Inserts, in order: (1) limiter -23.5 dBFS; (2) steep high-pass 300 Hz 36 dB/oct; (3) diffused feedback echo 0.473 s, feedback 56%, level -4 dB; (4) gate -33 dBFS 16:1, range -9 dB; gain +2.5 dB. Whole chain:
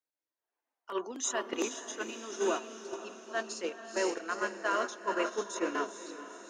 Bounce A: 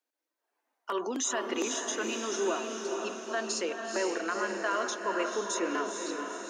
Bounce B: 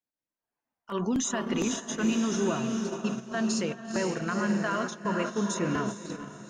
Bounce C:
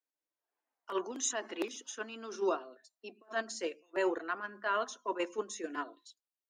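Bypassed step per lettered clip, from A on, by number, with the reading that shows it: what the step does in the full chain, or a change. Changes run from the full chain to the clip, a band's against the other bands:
4, momentary loudness spread change -5 LU; 2, 250 Hz band +10.0 dB; 3, momentary loudness spread change +2 LU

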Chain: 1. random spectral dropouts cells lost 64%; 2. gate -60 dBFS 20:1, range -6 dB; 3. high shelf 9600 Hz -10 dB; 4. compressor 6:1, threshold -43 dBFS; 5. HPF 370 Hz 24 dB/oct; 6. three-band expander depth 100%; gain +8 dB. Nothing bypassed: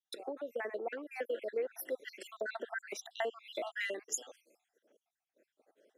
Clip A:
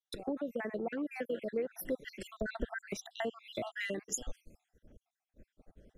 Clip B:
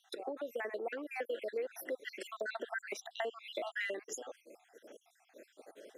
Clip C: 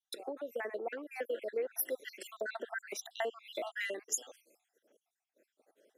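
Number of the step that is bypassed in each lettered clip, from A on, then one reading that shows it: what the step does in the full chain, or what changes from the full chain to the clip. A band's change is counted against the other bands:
5, 250 Hz band +11.5 dB; 6, 8 kHz band -6.5 dB; 3, 8 kHz band +3.0 dB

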